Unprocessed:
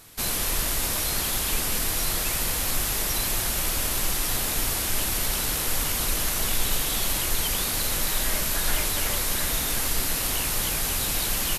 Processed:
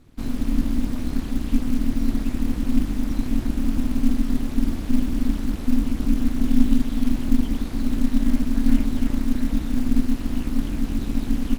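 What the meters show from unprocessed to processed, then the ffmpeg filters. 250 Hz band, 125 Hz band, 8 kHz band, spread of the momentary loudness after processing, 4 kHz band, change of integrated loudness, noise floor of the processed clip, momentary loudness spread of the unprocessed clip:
+17.0 dB, +5.0 dB, −20.5 dB, 5 LU, −15.0 dB, −1.0 dB, −30 dBFS, 0 LU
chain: -af "aemphasis=mode=reproduction:type=riaa,acrusher=bits=8:mode=log:mix=0:aa=0.000001,tremolo=f=250:d=0.857,volume=-5.5dB"

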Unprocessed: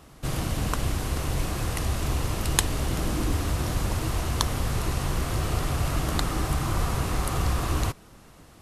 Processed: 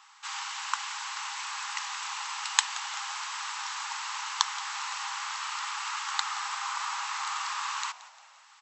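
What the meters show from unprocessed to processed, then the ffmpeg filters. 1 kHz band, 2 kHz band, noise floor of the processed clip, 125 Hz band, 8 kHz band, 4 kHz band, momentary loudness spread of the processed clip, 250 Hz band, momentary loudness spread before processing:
+0.5 dB, +1.5 dB, −56 dBFS, below −40 dB, −1.0 dB, +1.5 dB, 5 LU, below −40 dB, 3 LU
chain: -filter_complex "[0:a]afftfilt=real='re*between(b*sr/4096,790,8000)':imag='im*between(b*sr/4096,790,8000)':win_size=4096:overlap=0.75,asplit=4[link_01][link_02][link_03][link_04];[link_02]adelay=175,afreqshift=-93,volume=-18dB[link_05];[link_03]adelay=350,afreqshift=-186,volume=-25.7dB[link_06];[link_04]adelay=525,afreqshift=-279,volume=-33.5dB[link_07];[link_01][link_05][link_06][link_07]amix=inputs=4:normalize=0,volume=1.5dB"

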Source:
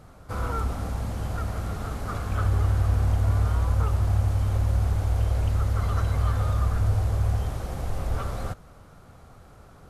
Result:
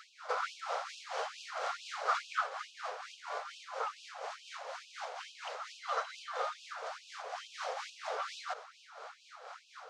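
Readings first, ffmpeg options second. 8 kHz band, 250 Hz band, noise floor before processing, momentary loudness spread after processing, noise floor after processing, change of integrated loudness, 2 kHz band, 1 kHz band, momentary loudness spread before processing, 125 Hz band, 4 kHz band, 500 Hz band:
−5.5 dB, below −40 dB, −50 dBFS, 9 LU, −60 dBFS, −13.5 dB, 0.0 dB, −1.5 dB, 9 LU, below −40 dB, +1.0 dB, −5.5 dB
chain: -af "lowpass=frequency=6100:width=0.5412,lowpass=frequency=6100:width=1.3066,acompressor=threshold=-31dB:ratio=3,tremolo=f=4.2:d=0.49,afftfilt=real='re*gte(b*sr/1024,410*pow(2500/410,0.5+0.5*sin(2*PI*2.3*pts/sr)))':imag='im*gte(b*sr/1024,410*pow(2500/410,0.5+0.5*sin(2*PI*2.3*pts/sr)))':win_size=1024:overlap=0.75,volume=10dB"

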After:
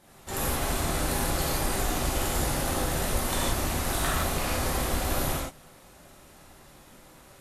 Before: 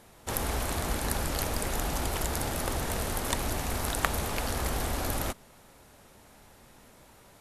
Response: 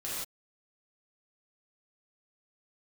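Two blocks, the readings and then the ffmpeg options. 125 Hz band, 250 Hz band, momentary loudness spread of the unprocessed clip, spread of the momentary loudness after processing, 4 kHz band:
+3.0 dB, +4.0 dB, 2 LU, 2 LU, +3.5 dB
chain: -filter_complex "[0:a]equalizer=frequency=450:width_type=o:width=0.24:gain=-3.5,asoftclip=type=tanh:threshold=-11dB[link_01];[1:a]atrim=start_sample=2205[link_02];[link_01][link_02]afir=irnorm=-1:irlink=0"

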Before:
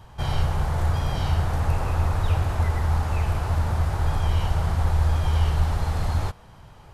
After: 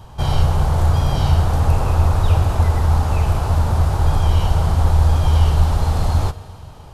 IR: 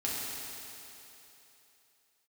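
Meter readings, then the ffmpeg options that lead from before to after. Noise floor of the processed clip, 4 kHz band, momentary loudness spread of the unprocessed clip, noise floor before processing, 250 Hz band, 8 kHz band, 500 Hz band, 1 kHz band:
−38 dBFS, +6.0 dB, 4 LU, −48 dBFS, +7.5 dB, +7.0 dB, +7.0 dB, +6.5 dB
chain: -filter_complex "[0:a]equalizer=frequency=1900:width_type=o:width=0.87:gain=-7,asplit=2[link_01][link_02];[1:a]atrim=start_sample=2205[link_03];[link_02][link_03]afir=irnorm=-1:irlink=0,volume=-19.5dB[link_04];[link_01][link_04]amix=inputs=2:normalize=0,volume=6.5dB"

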